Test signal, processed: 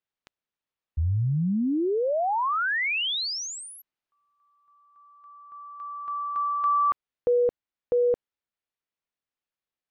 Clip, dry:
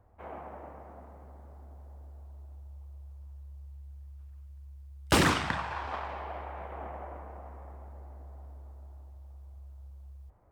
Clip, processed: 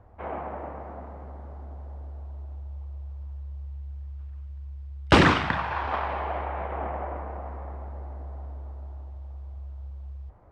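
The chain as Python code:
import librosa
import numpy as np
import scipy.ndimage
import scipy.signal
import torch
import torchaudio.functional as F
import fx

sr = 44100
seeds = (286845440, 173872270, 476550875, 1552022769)

p1 = scipy.signal.sosfilt(scipy.signal.butter(2, 3500.0, 'lowpass', fs=sr, output='sos'), x)
p2 = fx.rider(p1, sr, range_db=5, speed_s=0.5)
y = p1 + F.gain(torch.from_numpy(p2), 0.5).numpy()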